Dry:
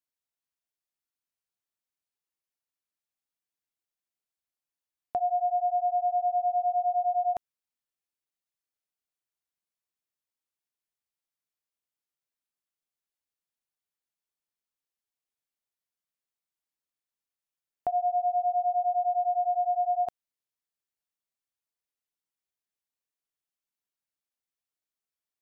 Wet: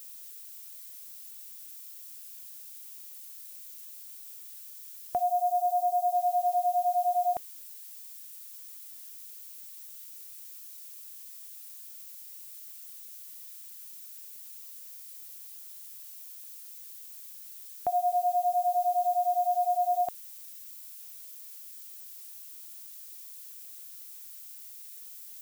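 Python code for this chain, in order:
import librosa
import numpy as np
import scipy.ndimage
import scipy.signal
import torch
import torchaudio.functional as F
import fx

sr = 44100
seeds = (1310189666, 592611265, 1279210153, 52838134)

y = fx.dmg_noise_colour(x, sr, seeds[0], colour='violet', level_db=-46.0)
y = fx.fixed_phaser(y, sr, hz=780.0, stages=4, at=(5.23, 6.13))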